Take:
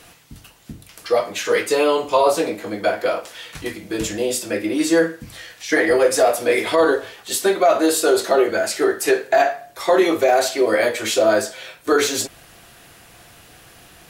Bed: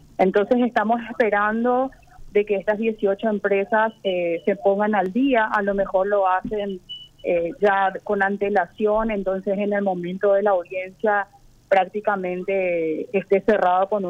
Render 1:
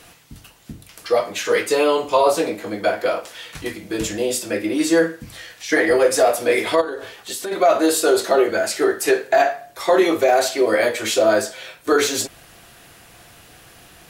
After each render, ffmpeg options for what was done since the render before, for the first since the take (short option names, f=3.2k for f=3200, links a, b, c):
-filter_complex "[0:a]asplit=3[a][b][c];[a]afade=t=out:st=6.8:d=0.02[d];[b]acompressor=threshold=-25dB:ratio=5:attack=3.2:release=140:knee=1:detection=peak,afade=t=in:st=6.8:d=0.02,afade=t=out:st=7.51:d=0.02[e];[c]afade=t=in:st=7.51:d=0.02[f];[d][e][f]amix=inputs=3:normalize=0"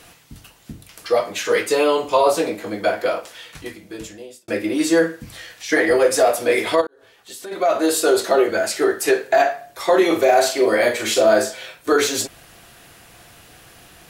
-filter_complex "[0:a]asettb=1/sr,asplit=3[a][b][c];[a]atrim=end=10.064[d];[b]atrim=start=10.06:end=11.66,asetpts=PTS-STARTPTS,afade=t=in:d=0.004:c=qsin,afade=t=out:st=1.596:d=0.004:c=qsin,asplit=2[e][f];[f]adelay=41,volume=-6dB[g];[e][g]amix=inputs=2:normalize=0,atrim=end_sample=70560[h];[c]atrim=start=11.656[i];[d][h]acrossfade=d=0.004:c1=hsin:c2=qsin[j];[j][i]acrossfade=d=0.004:c1=qsin:c2=hsin,asplit=3[k][l][m];[k]atrim=end=4.48,asetpts=PTS-STARTPTS,afade=t=out:st=3.03:d=1.45[n];[l]atrim=start=4.48:end=6.87,asetpts=PTS-STARTPTS,afade=t=in:d=0.004:c=hsin,afade=t=out:st=2.386:d=0.004:c=hsin[o];[m]atrim=start=6.87,asetpts=PTS-STARTPTS,afade=t=in:d=1.16[p];[n][o][p]concat=n=3:v=0:a=1"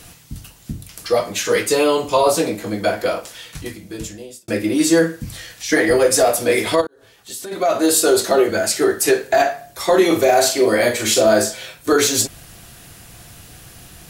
-af "bass=f=250:g=10,treble=f=4k:g=7"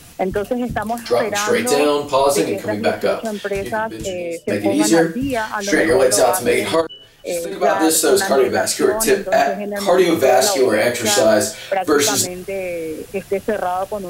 -filter_complex "[1:a]volume=-2.5dB[a];[0:a][a]amix=inputs=2:normalize=0"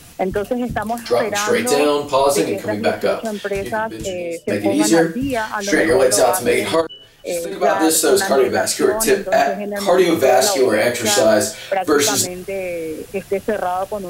-af anull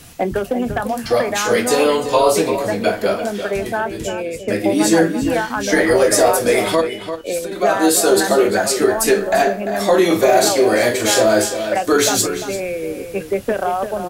-filter_complex "[0:a]asplit=2[a][b];[b]adelay=25,volume=-14dB[c];[a][c]amix=inputs=2:normalize=0,asplit=2[d][e];[e]adelay=344,volume=-9dB,highshelf=f=4k:g=-7.74[f];[d][f]amix=inputs=2:normalize=0"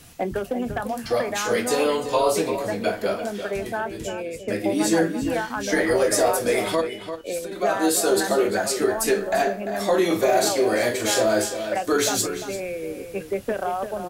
-af "volume=-6.5dB"